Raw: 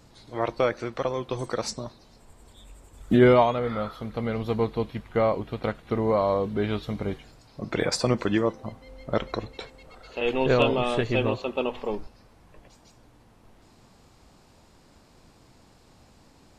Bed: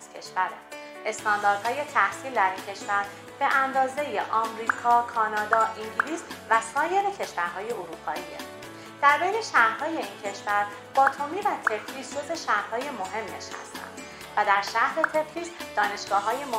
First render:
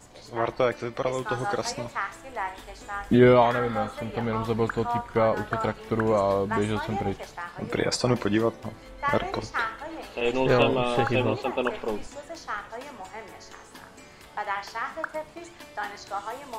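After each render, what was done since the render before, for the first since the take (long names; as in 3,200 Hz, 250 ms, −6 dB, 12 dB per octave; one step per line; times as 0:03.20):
mix in bed −8.5 dB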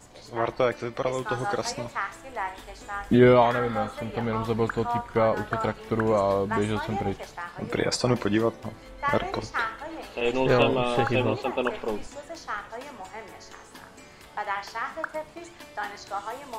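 no processing that can be heard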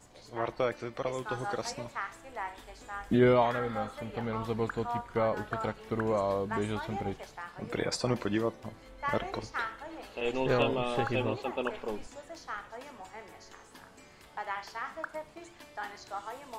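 level −6.5 dB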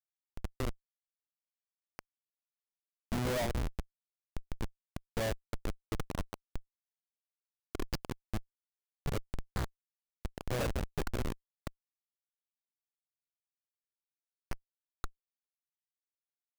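rippled gain that drifts along the octave scale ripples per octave 0.51, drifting −0.56 Hz, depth 12 dB
comparator with hysteresis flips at −22 dBFS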